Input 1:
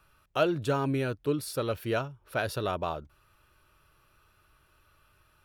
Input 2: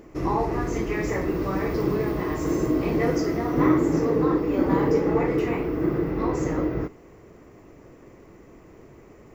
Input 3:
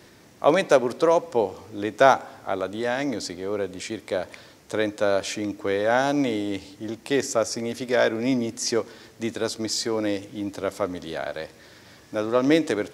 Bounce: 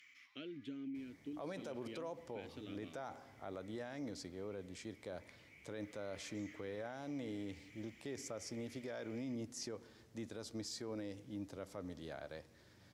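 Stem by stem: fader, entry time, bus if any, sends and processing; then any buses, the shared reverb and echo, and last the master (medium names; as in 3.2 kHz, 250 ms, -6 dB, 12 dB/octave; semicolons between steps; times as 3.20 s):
-1.5 dB, 0.00 s, bus A, no send, none
-13.0 dB, 0.00 s, bus A, no send, steep high-pass 800 Hz 96 dB/octave; tilt EQ +4.5 dB/octave; level flattener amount 70%; auto duck -14 dB, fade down 0.85 s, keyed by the first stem
-18.5 dB, 0.95 s, no bus, no send, bass shelf 210 Hz +11 dB; peak limiter -11.5 dBFS, peak gain reduction 9.5 dB
bus A: 0.0 dB, vowel filter i; compression 4:1, threshold -45 dBFS, peak gain reduction 12 dB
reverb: none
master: peak limiter -36 dBFS, peak gain reduction 7 dB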